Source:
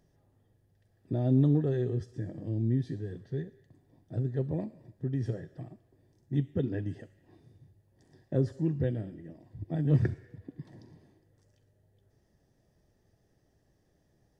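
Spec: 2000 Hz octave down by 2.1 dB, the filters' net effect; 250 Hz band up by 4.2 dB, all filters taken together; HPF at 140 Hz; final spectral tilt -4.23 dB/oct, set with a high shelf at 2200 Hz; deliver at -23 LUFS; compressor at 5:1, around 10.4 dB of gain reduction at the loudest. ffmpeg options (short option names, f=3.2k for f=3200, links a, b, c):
-af "highpass=140,equalizer=f=250:t=o:g=6,equalizer=f=2k:t=o:g=-6,highshelf=f=2.2k:g=7,acompressor=threshold=-29dB:ratio=5,volume=13.5dB"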